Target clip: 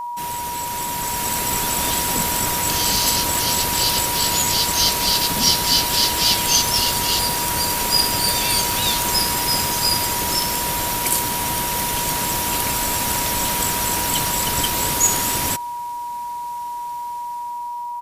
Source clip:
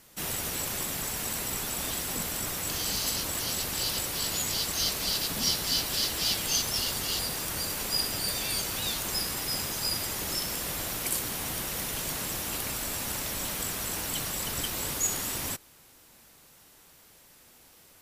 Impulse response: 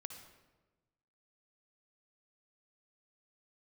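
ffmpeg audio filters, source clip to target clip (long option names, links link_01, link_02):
-af "aresample=32000,aresample=44100,dynaudnorm=framelen=320:gausssize=7:maxgain=10dB,aeval=exprs='val(0)+0.0447*sin(2*PI*960*n/s)':channel_layout=same,volume=1.5dB"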